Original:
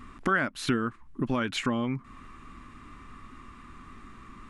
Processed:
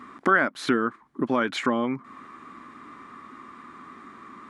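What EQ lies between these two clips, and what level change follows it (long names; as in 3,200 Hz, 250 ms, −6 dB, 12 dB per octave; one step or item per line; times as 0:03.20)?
high-pass filter 290 Hz 12 dB per octave
parametric band 2,700 Hz −8 dB 0.25 octaves
high-shelf EQ 3,700 Hz −11 dB
+7.5 dB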